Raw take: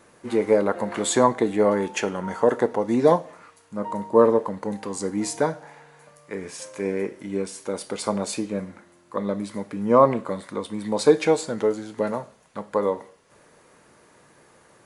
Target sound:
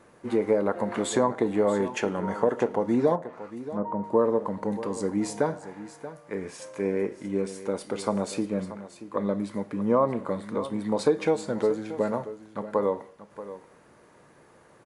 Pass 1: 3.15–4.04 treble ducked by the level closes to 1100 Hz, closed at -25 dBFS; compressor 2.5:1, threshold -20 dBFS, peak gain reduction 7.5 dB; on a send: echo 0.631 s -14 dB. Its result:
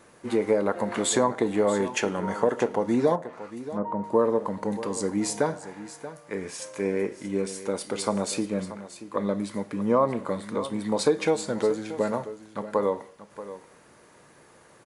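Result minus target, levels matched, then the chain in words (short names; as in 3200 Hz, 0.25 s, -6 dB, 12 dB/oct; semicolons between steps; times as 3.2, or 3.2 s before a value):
4000 Hz band +5.0 dB
3.15–4.04 treble ducked by the level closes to 1100 Hz, closed at -25 dBFS; compressor 2.5:1, threshold -20 dBFS, peak gain reduction 7.5 dB; high shelf 2400 Hz -8 dB; on a send: echo 0.631 s -14 dB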